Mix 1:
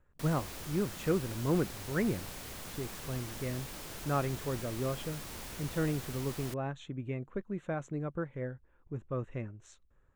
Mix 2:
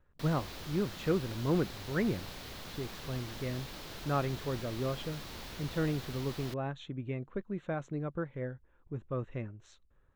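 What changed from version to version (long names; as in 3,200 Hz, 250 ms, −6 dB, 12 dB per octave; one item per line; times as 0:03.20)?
master: add drawn EQ curve 2,500 Hz 0 dB, 4,000 Hz +4 dB, 8,700 Hz −10 dB, 14,000 Hz −6 dB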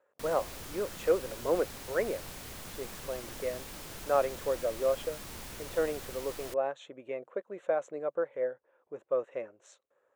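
speech: add high-pass with resonance 540 Hz, resonance Q 3.7
master: add drawn EQ curve 2,500 Hz 0 dB, 4,000 Hz −4 dB, 8,700 Hz +10 dB, 14,000 Hz +6 dB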